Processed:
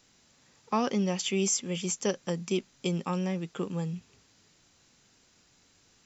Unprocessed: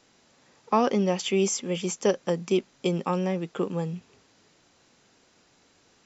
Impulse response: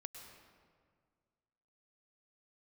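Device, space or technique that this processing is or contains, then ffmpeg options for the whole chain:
smiley-face EQ: -af "lowshelf=f=140:g=6.5,equalizer=f=530:t=o:w=2.4:g=-5.5,highshelf=f=6.9k:g=8.5,volume=-2.5dB"

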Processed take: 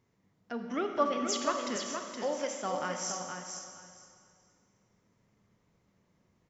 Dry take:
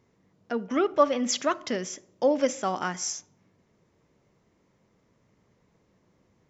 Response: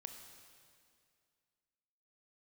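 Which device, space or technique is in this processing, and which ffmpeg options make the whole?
stairwell: -filter_complex "[0:a]asettb=1/sr,asplit=3[a][b][c];[a]atrim=end=1.764[d];[b]atrim=start=1.76:end=2.62,asetpts=PTS-STARTPTS,afade=t=in:d=0.004:c=qsin,afade=t=out:st=0.856:d=0.004:c=qsin,highpass=420[e];[c]atrim=start=2.616[f];[d][e]acrossfade=d=0.004:c1=hsin:c2=qsin[g];[g][f]acrossfade=d=0.004:c1=qsin:c2=hsin[h];[1:a]atrim=start_sample=2205[i];[h][i]afir=irnorm=-1:irlink=0,equalizer=f=450:w=0.97:g=-4,aecho=1:1:469|938|1407:0.501|0.0802|0.0128"

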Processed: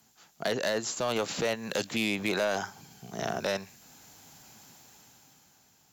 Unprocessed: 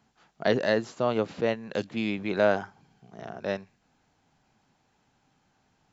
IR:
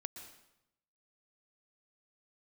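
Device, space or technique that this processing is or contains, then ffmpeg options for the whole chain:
FM broadcast chain: -filter_complex "[0:a]highpass=58,dynaudnorm=f=260:g=9:m=12dB,acrossover=split=580|1200|3300[a][b][c][d];[a]acompressor=threshold=-30dB:ratio=4[e];[b]acompressor=threshold=-26dB:ratio=4[f];[c]acompressor=threshold=-34dB:ratio=4[g];[d]acompressor=threshold=-43dB:ratio=4[h];[e][f][g][h]amix=inputs=4:normalize=0,aemphasis=mode=production:type=50fm,alimiter=limit=-19dB:level=0:latency=1:release=11,asoftclip=type=hard:threshold=-22dB,lowpass=f=15k:w=0.5412,lowpass=f=15k:w=1.3066,aemphasis=mode=production:type=50fm"

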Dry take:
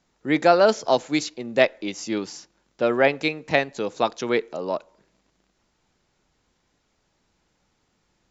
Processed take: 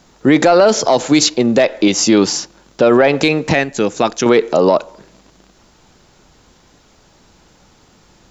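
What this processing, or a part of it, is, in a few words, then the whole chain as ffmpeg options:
mastering chain: -filter_complex "[0:a]asettb=1/sr,asplit=3[a][b][c];[a]atrim=end=3.534[d];[b]atrim=start=3.53:end=4.26,asetpts=PTS-STARTPTS,afade=t=in:d=0.004:c=qsin,afade=t=out:st=0.726:d=0.004:c=qsin,equalizer=f=125:t=o:w=1:g=-6,equalizer=f=250:t=o:w=1:g=-3,equalizer=f=500:t=o:w=1:g=-8,equalizer=f=1k:t=o:w=1:g=-9,equalizer=f=4k:t=o:w=1:g=-10[e];[c]atrim=start=4.256[f];[d][e]acrossfade=d=0.004:c1=hsin:c2=qsin[g];[g][f]acrossfade=d=0.004:c1=qsin:c2=hsin,equalizer=f=2.1k:t=o:w=0.77:g=-3.5,acompressor=threshold=-21dB:ratio=2,asoftclip=type=tanh:threshold=-10.5dB,alimiter=level_in=21dB:limit=-1dB:release=50:level=0:latency=1,volume=-1dB"

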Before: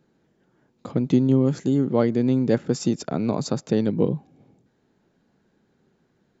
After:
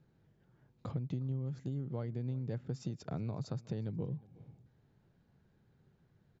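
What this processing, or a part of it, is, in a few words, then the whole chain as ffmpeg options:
jukebox: -filter_complex "[0:a]lowpass=5.6k,lowshelf=f=170:t=q:w=1.5:g=10.5,acompressor=threshold=-29dB:ratio=5,asplit=2[a][b];[b]adelay=361.5,volume=-22dB,highshelf=f=4k:g=-8.13[c];[a][c]amix=inputs=2:normalize=0,volume=-7.5dB"

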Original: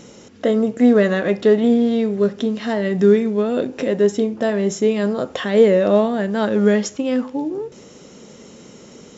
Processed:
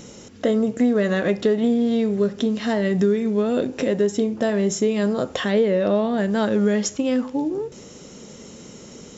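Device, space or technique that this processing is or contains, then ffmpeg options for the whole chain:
ASMR close-microphone chain: -filter_complex "[0:a]lowshelf=f=120:g=7.5,acompressor=threshold=-15dB:ratio=4,highshelf=f=6.2k:g=8,asettb=1/sr,asplit=3[a][b][c];[a]atrim=end=5.524[d];[b]atrim=start=5.52:end=6.18,asetpts=PTS-STARTPTS,afade=t=in:d=0.004:c=qsin,afade=t=out:st=0.656:d=0.004:c=qsin,lowpass=f=5.6k:w=0.5412,lowpass=f=5.6k:w=1.3066[e];[c]atrim=start=6.176[f];[d][e]acrossfade=d=0.004:c1=hsin:c2=qsin[g];[g][f]acrossfade=d=0.004:c1=qsin:c2=hsin,volume=-1dB"

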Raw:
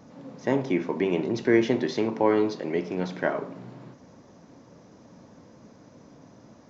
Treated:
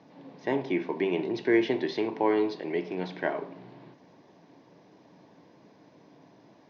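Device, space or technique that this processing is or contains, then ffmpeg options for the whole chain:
kitchen radio: -af "highpass=200,equalizer=f=230:t=q:w=4:g=-9,equalizer=f=530:t=q:w=4:g=-7,equalizer=f=1.3k:t=q:w=4:g=-10,lowpass=f=4.5k:w=0.5412,lowpass=f=4.5k:w=1.3066"

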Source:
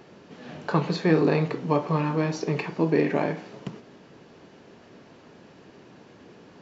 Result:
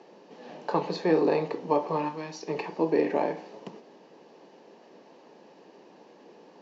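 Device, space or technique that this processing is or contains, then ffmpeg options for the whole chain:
television speaker: -filter_complex "[0:a]asplit=3[a][b][c];[a]afade=t=out:st=2.08:d=0.02[d];[b]equalizer=f=460:w=0.52:g=-11.5,afade=t=in:st=2.08:d=0.02,afade=t=out:st=2.48:d=0.02[e];[c]afade=t=in:st=2.48:d=0.02[f];[d][e][f]amix=inputs=3:normalize=0,highpass=f=210:w=0.5412,highpass=f=210:w=1.3066,equalizer=f=250:t=q:w=4:g=-4,equalizer=f=510:t=q:w=4:g=4,equalizer=f=860:t=q:w=4:g=6,equalizer=f=1.4k:t=q:w=4:g=-9,equalizer=f=2.2k:t=q:w=4:g=-4,equalizer=f=3.4k:t=q:w=4:g=-4,lowpass=f=6.6k:w=0.5412,lowpass=f=6.6k:w=1.3066,volume=-2.5dB"

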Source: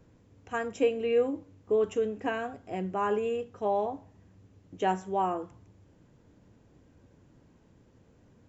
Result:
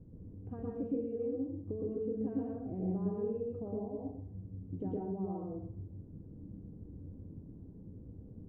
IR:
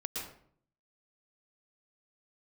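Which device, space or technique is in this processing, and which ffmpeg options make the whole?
television next door: -filter_complex "[0:a]acompressor=threshold=-40dB:ratio=5,lowpass=270[a];[1:a]atrim=start_sample=2205[b];[a][b]afir=irnorm=-1:irlink=0,volume=9.5dB"

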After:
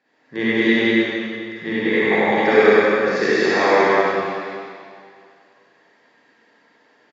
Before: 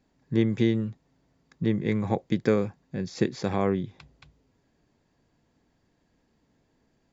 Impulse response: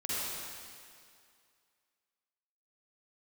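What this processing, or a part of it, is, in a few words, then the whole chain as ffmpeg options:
station announcement: -filter_complex "[0:a]highpass=490,lowpass=4.2k,equalizer=f=1.8k:t=o:w=0.47:g=8,aecho=1:1:99.13|198.3:0.708|0.794[a];[1:a]atrim=start_sample=2205[b];[a][b]afir=irnorm=-1:irlink=0,volume=8dB"

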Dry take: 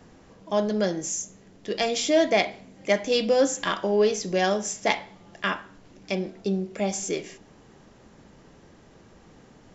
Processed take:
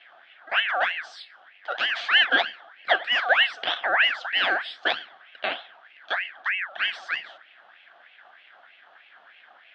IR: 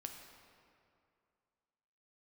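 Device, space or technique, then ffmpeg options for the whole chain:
voice changer toy: -af "aeval=exprs='val(0)*sin(2*PI*1700*n/s+1700*0.45/3.2*sin(2*PI*3.2*n/s))':c=same,highpass=400,equalizer=f=440:t=q:w=4:g=-6,equalizer=f=700:t=q:w=4:g=9,equalizer=f=1k:t=q:w=4:g=-5,equalizer=f=1.6k:t=q:w=4:g=7,equalizer=f=2.3k:t=q:w=4:g=-3,equalizer=f=3.3k:t=q:w=4:g=9,lowpass=f=3.6k:w=0.5412,lowpass=f=3.6k:w=1.3066"

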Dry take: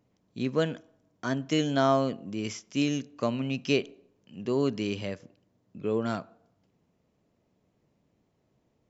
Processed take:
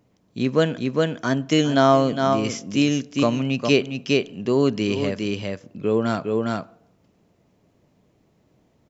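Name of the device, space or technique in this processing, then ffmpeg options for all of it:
ducked delay: -filter_complex "[0:a]asplit=3[a][b][c];[b]adelay=408,volume=-2dB[d];[c]apad=whole_len=410303[e];[d][e]sidechaincompress=threshold=-37dB:ratio=8:attack=31:release=193[f];[a][f]amix=inputs=2:normalize=0,volume=7.5dB"

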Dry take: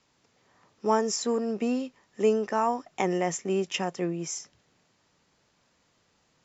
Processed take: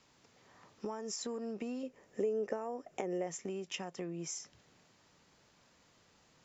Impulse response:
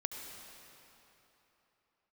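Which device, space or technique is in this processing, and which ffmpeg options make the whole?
serial compression, leveller first: -filter_complex "[0:a]acompressor=threshold=-28dB:ratio=3,acompressor=threshold=-41dB:ratio=4,asettb=1/sr,asplit=3[a][b][c];[a]atrim=end=1.834[d];[b]atrim=start=1.83:end=3.27,asetpts=PTS-STARTPTS,afade=t=in:d=0.004:c=qsin,afade=t=out:st=1.436:d=0.004:c=qsin,equalizer=f=500:t=o:w=1:g=10,equalizer=f=1k:t=o:w=1:g=-6,equalizer=f=4k:t=o:w=1:g=-8[e];[c]atrim=start=3.266[f];[d][e]acrossfade=d=0.004:c1=hsin:c2=qsin[g];[g][f]acrossfade=d=0.004:c1=qsin:c2=hsin,volume=1.5dB"

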